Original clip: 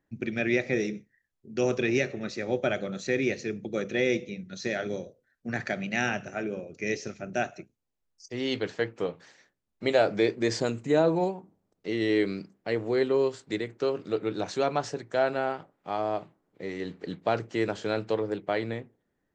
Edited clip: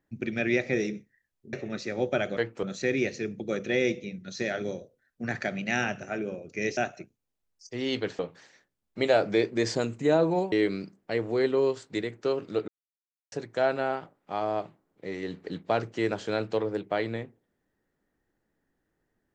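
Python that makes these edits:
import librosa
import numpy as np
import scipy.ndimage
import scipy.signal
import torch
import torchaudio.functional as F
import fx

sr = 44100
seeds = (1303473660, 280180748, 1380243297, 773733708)

y = fx.edit(x, sr, fx.cut(start_s=1.53, length_s=0.51),
    fx.cut(start_s=7.02, length_s=0.34),
    fx.move(start_s=8.78, length_s=0.26, to_s=2.88),
    fx.cut(start_s=11.37, length_s=0.72),
    fx.silence(start_s=14.25, length_s=0.64), tone=tone)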